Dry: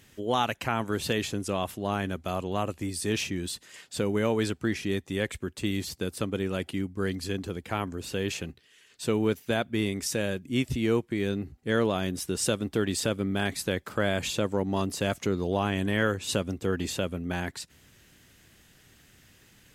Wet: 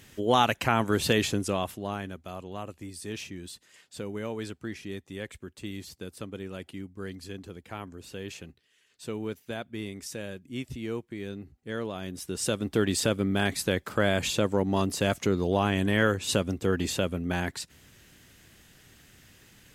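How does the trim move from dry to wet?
1.32 s +4 dB
2.22 s -8.5 dB
11.93 s -8.5 dB
12.79 s +2 dB

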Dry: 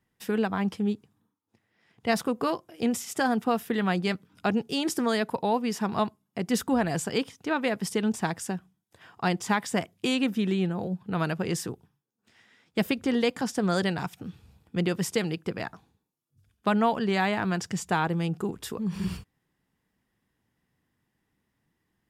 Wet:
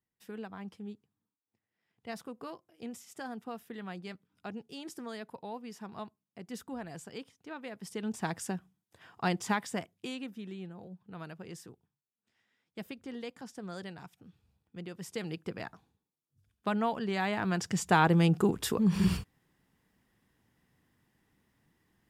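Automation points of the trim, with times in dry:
7.71 s -16 dB
8.35 s -4 dB
9.47 s -4 dB
10.33 s -16.5 dB
14.94 s -16.5 dB
15.34 s -7 dB
17.15 s -7 dB
18.17 s +4 dB

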